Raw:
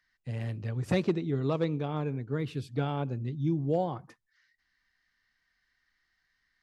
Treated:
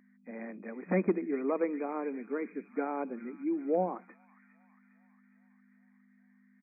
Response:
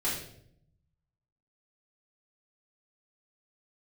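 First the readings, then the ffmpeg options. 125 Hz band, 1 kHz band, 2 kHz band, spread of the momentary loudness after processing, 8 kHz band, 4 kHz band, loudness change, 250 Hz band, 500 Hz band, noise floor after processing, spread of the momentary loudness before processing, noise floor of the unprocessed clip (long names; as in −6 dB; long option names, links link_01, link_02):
below −10 dB, 0.0 dB, 0.0 dB, 13 LU, can't be measured, below −35 dB, −2.5 dB, −1.5 dB, 0.0 dB, −65 dBFS, 7 LU, −78 dBFS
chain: -filter_complex "[0:a]acrossover=split=320|350|1500[link_01][link_02][link_03][link_04];[link_04]aecho=1:1:407|814|1221|1628|2035|2442|2849:0.355|0.213|0.128|0.0766|0.046|0.0276|0.0166[link_05];[link_01][link_02][link_03][link_05]amix=inputs=4:normalize=0,aeval=exprs='val(0)+0.00251*(sin(2*PI*50*n/s)+sin(2*PI*2*50*n/s)/2+sin(2*PI*3*50*n/s)/3+sin(2*PI*4*50*n/s)/4+sin(2*PI*5*50*n/s)/5)':channel_layout=same,afftfilt=real='re*between(b*sr/4096,180,2500)':imag='im*between(b*sr/4096,180,2500)':win_size=4096:overlap=0.75"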